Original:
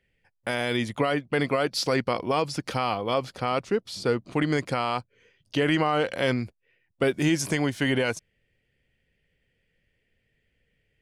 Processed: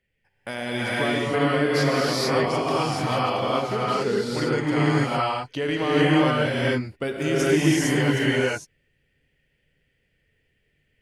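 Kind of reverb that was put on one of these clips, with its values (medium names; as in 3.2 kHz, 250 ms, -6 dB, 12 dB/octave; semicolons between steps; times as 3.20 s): gated-style reverb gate 480 ms rising, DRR -7.5 dB; trim -4.5 dB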